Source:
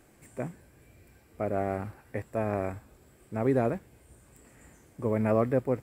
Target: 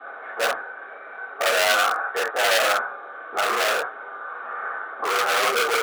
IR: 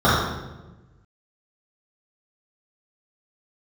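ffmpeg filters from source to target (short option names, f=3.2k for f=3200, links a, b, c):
-filter_complex "[0:a]asplit=2[a][b];[b]highpass=f=720:p=1,volume=30dB,asoftclip=type=tanh:threshold=-11.5dB[c];[a][c]amix=inputs=2:normalize=0,lowpass=f=1.1k:p=1,volume=-6dB,highpass=f=480:t=q:w=0.5412,highpass=f=480:t=q:w=1.307,lowpass=f=2.7k:t=q:w=0.5176,lowpass=f=2.7k:t=q:w=0.7071,lowpass=f=2.7k:t=q:w=1.932,afreqshift=-52,bandreject=f=2k:w=13[d];[1:a]atrim=start_sample=2205,atrim=end_sample=3969[e];[d][e]afir=irnorm=-1:irlink=0,asoftclip=type=hard:threshold=-1dB,asettb=1/sr,asplit=3[f][g][h];[f]atrim=end=3.414[i];[g]atrim=start=3.41:end=5.42,asetpts=PTS-STARTPTS,afade=t=in:d=0.004:c=qsin,afade=t=out:st=2.006:d=0.004:c=qsin,equalizer=f=1.2k:w=2:g=4.5[j];[h]atrim=start=5.416[k];[i][j]acrossfade=d=0.004:c1=hsin:c2=qsin[l];[l][k]acrossfade=d=0.004:c1=qsin:c2=hsin,alimiter=limit=-1.5dB:level=0:latency=1:release=29,aderivative,volume=2dB"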